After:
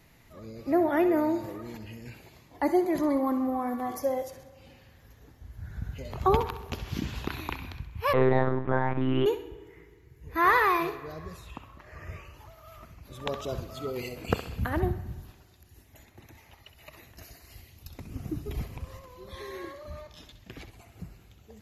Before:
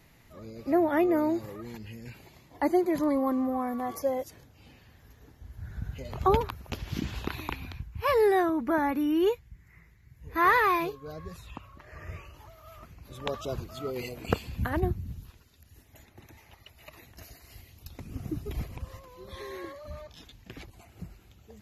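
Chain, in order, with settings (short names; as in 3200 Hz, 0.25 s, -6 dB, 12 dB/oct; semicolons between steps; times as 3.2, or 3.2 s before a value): thinning echo 65 ms, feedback 45%, level -11 dB; spring tank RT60 1.8 s, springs 36/50 ms, chirp 60 ms, DRR 16 dB; 8.13–9.26 monotone LPC vocoder at 8 kHz 130 Hz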